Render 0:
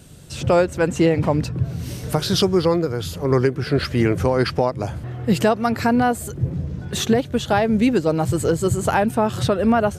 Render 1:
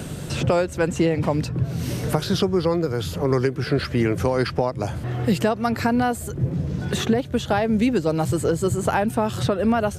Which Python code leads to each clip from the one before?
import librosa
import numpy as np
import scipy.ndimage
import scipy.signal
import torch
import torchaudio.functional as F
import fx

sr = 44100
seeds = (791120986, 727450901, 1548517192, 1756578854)

y = fx.band_squash(x, sr, depth_pct=70)
y = y * librosa.db_to_amplitude(-3.0)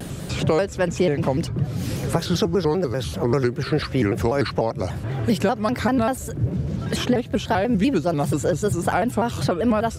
y = fx.vibrato_shape(x, sr, shape='square', rate_hz=5.1, depth_cents=160.0)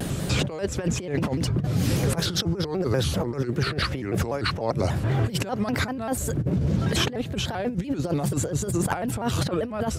y = fx.over_compress(x, sr, threshold_db=-24.0, ratio=-0.5)